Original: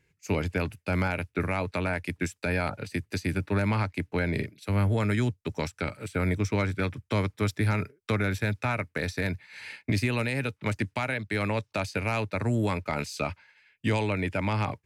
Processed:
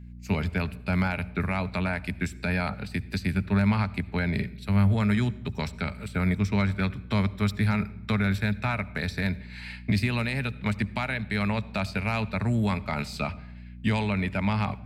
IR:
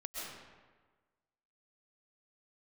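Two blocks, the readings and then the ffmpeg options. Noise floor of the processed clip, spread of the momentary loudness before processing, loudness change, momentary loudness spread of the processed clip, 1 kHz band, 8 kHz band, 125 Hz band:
-43 dBFS, 6 LU, +1.5 dB, 7 LU, 0.0 dB, -4.5 dB, +2.0 dB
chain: -filter_complex "[0:a]aeval=exprs='val(0)+0.00708*(sin(2*PI*60*n/s)+sin(2*PI*2*60*n/s)/2+sin(2*PI*3*60*n/s)/3+sin(2*PI*4*60*n/s)/4+sin(2*PI*5*60*n/s)/5)':c=same,equalizer=f=200:t=o:w=0.33:g=7,equalizer=f=315:t=o:w=0.33:g=-10,equalizer=f=500:t=o:w=0.33:g=-8,equalizer=f=4k:t=o:w=0.33:g=4,equalizer=f=6.3k:t=o:w=0.33:g=-8,equalizer=f=10k:t=o:w=0.33:g=-6,asplit=2[a][b];[1:a]atrim=start_sample=2205,asetrate=83790,aresample=44100,lowshelf=f=290:g=10.5[c];[b][c]afir=irnorm=-1:irlink=0,volume=-13.5dB[d];[a][d]amix=inputs=2:normalize=0"

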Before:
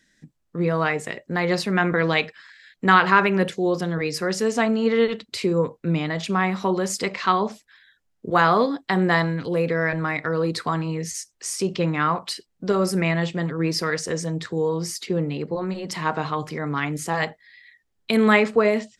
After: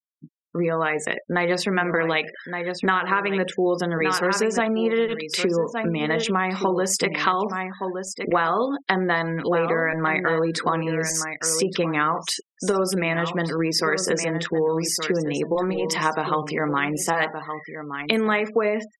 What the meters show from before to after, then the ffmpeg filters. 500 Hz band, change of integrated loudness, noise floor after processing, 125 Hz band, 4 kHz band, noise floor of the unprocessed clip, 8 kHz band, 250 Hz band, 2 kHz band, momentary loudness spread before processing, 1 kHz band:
+0.5 dB, -0.5 dB, -50 dBFS, -4.0 dB, +2.0 dB, -71 dBFS, +5.5 dB, -1.5 dB, 0.0 dB, 10 LU, -0.5 dB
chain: -af "aecho=1:1:1168:0.266,acompressor=threshold=-23dB:ratio=12,equalizer=f=110:t=o:w=1.2:g=-13.5,bandreject=f=4.3k:w=6.9,afftfilt=real='re*gte(hypot(re,im),0.00708)':imag='im*gte(hypot(re,im),0.00708)':win_size=1024:overlap=0.75,volume=7dB"

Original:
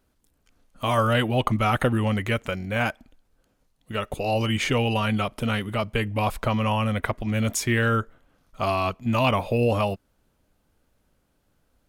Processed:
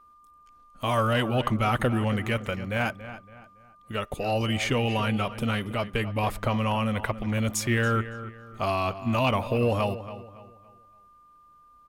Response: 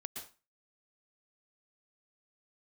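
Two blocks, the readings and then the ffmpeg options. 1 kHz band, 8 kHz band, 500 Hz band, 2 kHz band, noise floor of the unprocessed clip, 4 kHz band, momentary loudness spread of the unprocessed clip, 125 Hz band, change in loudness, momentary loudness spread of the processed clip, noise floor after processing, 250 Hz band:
-2.5 dB, -2.5 dB, -2.0 dB, -2.5 dB, -69 dBFS, -2.5 dB, 6 LU, -2.5 dB, -2.5 dB, 11 LU, -56 dBFS, -2.0 dB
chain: -filter_complex "[0:a]acontrast=77,aeval=exprs='val(0)+0.00631*sin(2*PI*1200*n/s)':c=same,asplit=2[a][b];[b]adelay=281,lowpass=f=3.2k:p=1,volume=-13dB,asplit=2[c][d];[d]adelay=281,lowpass=f=3.2k:p=1,volume=0.36,asplit=2[e][f];[f]adelay=281,lowpass=f=3.2k:p=1,volume=0.36,asplit=2[g][h];[h]adelay=281,lowpass=f=3.2k:p=1,volume=0.36[i];[a][c][e][g][i]amix=inputs=5:normalize=0,volume=-9dB"

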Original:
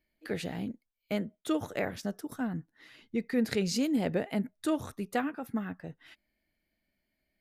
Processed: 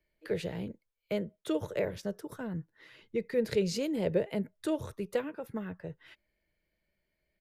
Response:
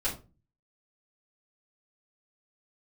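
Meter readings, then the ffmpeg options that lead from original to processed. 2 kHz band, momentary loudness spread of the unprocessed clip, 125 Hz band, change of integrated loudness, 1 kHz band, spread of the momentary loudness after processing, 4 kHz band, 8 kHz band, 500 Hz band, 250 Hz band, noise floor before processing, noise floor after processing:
-4.5 dB, 11 LU, -0.5 dB, -1.0 dB, -7.0 dB, 12 LU, -3.0 dB, -4.5 dB, +3.0 dB, -4.0 dB, -82 dBFS, -82 dBFS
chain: -filter_complex "[0:a]bass=f=250:g=2,treble=f=4k:g=-5,acrossover=split=170|780|2200[a][b][c][d];[b]aecho=1:1:2:0.86[e];[c]acompressor=threshold=-50dB:ratio=6[f];[a][e][f][d]amix=inputs=4:normalize=0"

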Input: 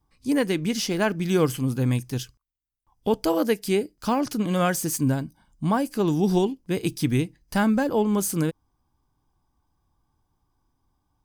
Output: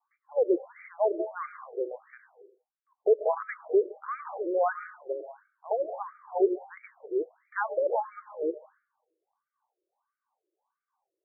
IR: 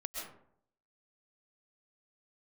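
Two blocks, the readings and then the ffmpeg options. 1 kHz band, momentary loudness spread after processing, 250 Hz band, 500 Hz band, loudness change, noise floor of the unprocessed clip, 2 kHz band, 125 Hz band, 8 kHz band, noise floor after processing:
-4.0 dB, 13 LU, -15.0 dB, -1.5 dB, -6.0 dB, -75 dBFS, -8.0 dB, under -40 dB, under -40 dB, under -85 dBFS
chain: -filter_complex "[0:a]tiltshelf=f=820:g=4,asplit=2[a][b];[1:a]atrim=start_sample=2205[c];[b][c]afir=irnorm=-1:irlink=0,volume=-6dB[d];[a][d]amix=inputs=2:normalize=0,afftfilt=real='re*between(b*sr/1024,440*pow(1700/440,0.5+0.5*sin(2*PI*1.5*pts/sr))/1.41,440*pow(1700/440,0.5+0.5*sin(2*PI*1.5*pts/sr))*1.41)':imag='im*between(b*sr/1024,440*pow(1700/440,0.5+0.5*sin(2*PI*1.5*pts/sr))/1.41,440*pow(1700/440,0.5+0.5*sin(2*PI*1.5*pts/sr))*1.41)':win_size=1024:overlap=0.75,volume=-2dB"

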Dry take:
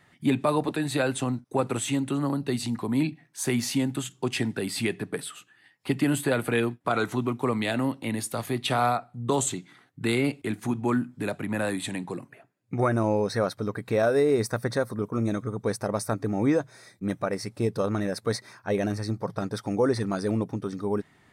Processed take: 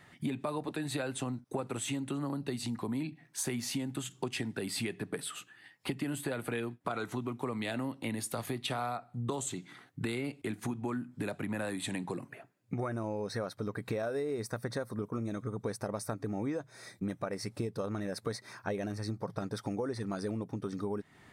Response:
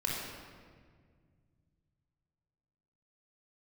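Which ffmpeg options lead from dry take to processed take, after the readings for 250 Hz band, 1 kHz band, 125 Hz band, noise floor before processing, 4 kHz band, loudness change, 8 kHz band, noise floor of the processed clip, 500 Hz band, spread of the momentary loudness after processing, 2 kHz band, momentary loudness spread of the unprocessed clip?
-9.0 dB, -10.0 dB, -8.5 dB, -61 dBFS, -7.0 dB, -9.5 dB, -6.5 dB, -62 dBFS, -10.0 dB, 4 LU, -9.0 dB, 8 LU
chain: -af "acompressor=threshold=-35dB:ratio=6,volume=2dB"

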